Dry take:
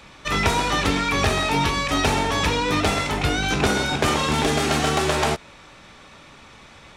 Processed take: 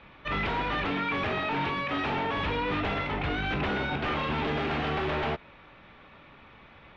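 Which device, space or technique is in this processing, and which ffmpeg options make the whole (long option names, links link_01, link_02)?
synthesiser wavefolder: -filter_complex "[0:a]asettb=1/sr,asplit=3[link_01][link_02][link_03];[link_01]atrim=end=0.854[link_04];[link_02]atrim=start=0.85:end=2.37,asetpts=PTS-STARTPTS,afade=type=in:duration=0.004:curve=qsin,afade=type=out:start_time=1.516:duration=0.004:curve=qsin,highpass=120[link_05];[link_03]atrim=start=2.366[link_06];[link_04][link_05]acrossfade=duration=0.004:curve1=hsin:curve2=qsin[link_07];[link_07][link_06]acrossfade=duration=0.004:curve1=qsin:curve2=hsin,aeval=exprs='0.133*(abs(mod(val(0)/0.133+3,4)-2)-1)':channel_layout=same,lowpass=frequency=3100:width=0.5412,lowpass=frequency=3100:width=1.3066,volume=-5.5dB"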